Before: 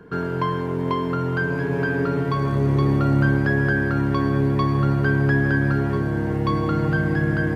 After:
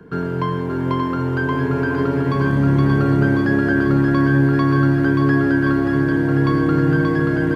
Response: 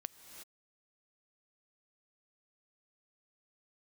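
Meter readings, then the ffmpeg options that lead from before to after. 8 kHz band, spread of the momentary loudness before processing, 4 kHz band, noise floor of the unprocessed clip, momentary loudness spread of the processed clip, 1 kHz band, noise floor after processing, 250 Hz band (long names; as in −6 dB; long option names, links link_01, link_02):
can't be measured, 5 LU, +2.0 dB, −25 dBFS, 5 LU, +2.5 dB, −23 dBFS, +6.0 dB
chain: -filter_complex "[0:a]lowshelf=frequency=150:gain=-7,acrossover=split=320|560[link_01][link_02][link_03];[link_01]acontrast=89[link_04];[link_04][link_02][link_03]amix=inputs=3:normalize=0,aecho=1:1:580|1073|1492|1848|2151:0.631|0.398|0.251|0.158|0.1"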